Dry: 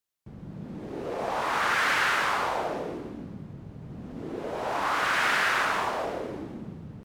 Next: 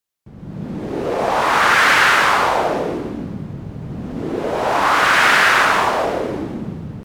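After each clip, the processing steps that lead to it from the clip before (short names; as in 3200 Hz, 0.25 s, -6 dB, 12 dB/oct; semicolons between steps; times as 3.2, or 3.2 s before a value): AGC gain up to 9.5 dB; gain +3 dB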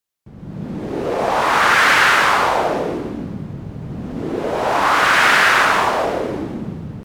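nothing audible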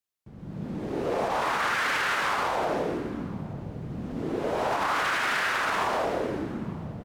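limiter -11 dBFS, peak gain reduction 9 dB; outdoor echo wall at 150 m, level -19 dB; gain -7 dB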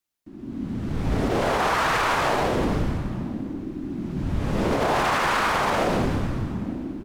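frequency shift -420 Hz; gain +4.5 dB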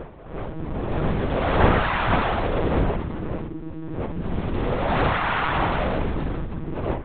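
wind noise 570 Hz -27 dBFS; monotone LPC vocoder at 8 kHz 160 Hz; gain -1 dB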